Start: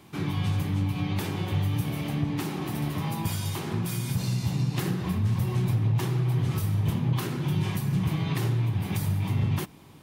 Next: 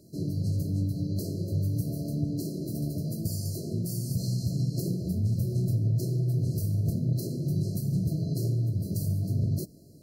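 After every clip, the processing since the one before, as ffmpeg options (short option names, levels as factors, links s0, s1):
-af "afftfilt=real='re*(1-between(b*sr/4096,690,4000))':imag='im*(1-between(b*sr/4096,690,4000))':win_size=4096:overlap=0.75,volume=0.841"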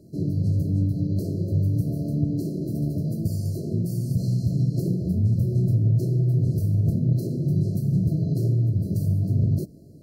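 -af "tiltshelf=f=1200:g=6"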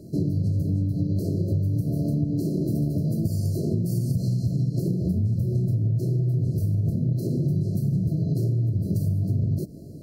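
-af "acompressor=threshold=0.0398:ratio=6,volume=2.24"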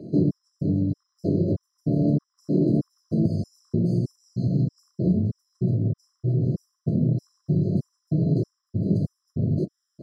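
-af "highpass=170,lowpass=2900,afftfilt=real='re*gt(sin(2*PI*1.6*pts/sr)*(1-2*mod(floor(b*sr/1024/1000),2)),0)':imag='im*gt(sin(2*PI*1.6*pts/sr)*(1-2*mod(floor(b*sr/1024/1000),2)),0)':win_size=1024:overlap=0.75,volume=2.24"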